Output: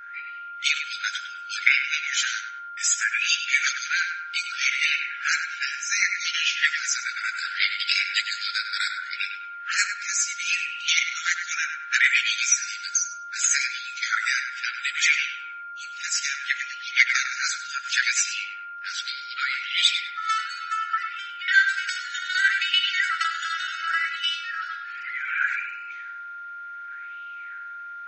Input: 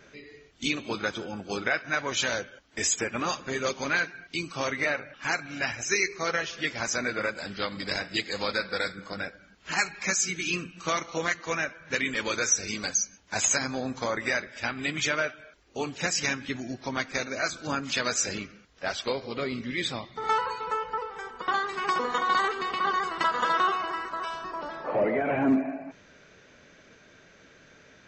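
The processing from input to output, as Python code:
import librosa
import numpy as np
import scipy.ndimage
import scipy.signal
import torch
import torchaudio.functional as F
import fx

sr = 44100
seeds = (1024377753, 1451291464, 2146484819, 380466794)

p1 = fx.env_lowpass(x, sr, base_hz=1600.0, full_db=-25.0)
p2 = fx.tilt_eq(p1, sr, slope=4.0)
p3 = fx.rider(p2, sr, range_db=4, speed_s=0.5)
p4 = fx.filter_lfo_highpass(p3, sr, shape='sine', hz=0.67, low_hz=540.0, high_hz=2900.0, q=7.0)
p5 = p4 + 10.0 ** (-34.0 / 20.0) * np.sin(2.0 * np.pi * 1400.0 * np.arange(len(p4)) / sr)
p6 = fx.brickwall_bandstop(p5, sr, low_hz=180.0, high_hz=1300.0)
p7 = p6 + fx.echo_filtered(p6, sr, ms=100, feedback_pct=45, hz=2400.0, wet_db=-5.5, dry=0)
y = p7 * librosa.db_to_amplitude(-4.5)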